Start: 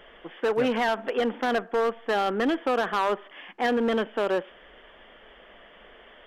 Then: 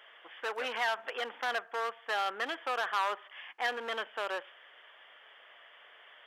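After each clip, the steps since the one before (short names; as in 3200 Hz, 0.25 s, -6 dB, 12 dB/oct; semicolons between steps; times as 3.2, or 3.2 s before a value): HPF 940 Hz 12 dB/oct; gain -2.5 dB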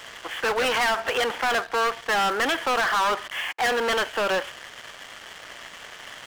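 sample leveller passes 5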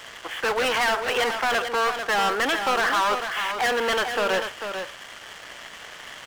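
echo 0.444 s -7.5 dB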